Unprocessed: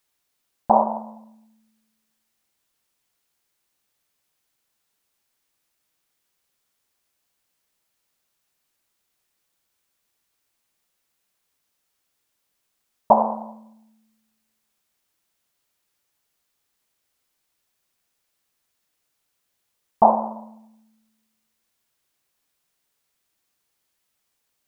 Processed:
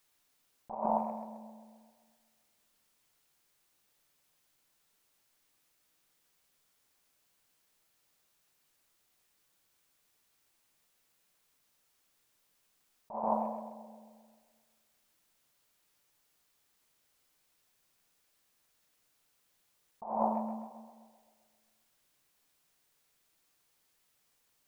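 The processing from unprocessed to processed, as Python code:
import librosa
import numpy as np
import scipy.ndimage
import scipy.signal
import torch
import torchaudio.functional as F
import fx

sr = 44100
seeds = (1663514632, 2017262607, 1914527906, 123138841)

y = fx.over_compress(x, sr, threshold_db=-28.0, ratio=-1.0)
y = fx.echo_tape(y, sr, ms=131, feedback_pct=68, wet_db=-10, lp_hz=1500.0, drive_db=11.0, wow_cents=16)
y = fx.room_shoebox(y, sr, seeds[0], volume_m3=150.0, walls='furnished', distance_m=0.42)
y = y * 10.0 ** (-6.5 / 20.0)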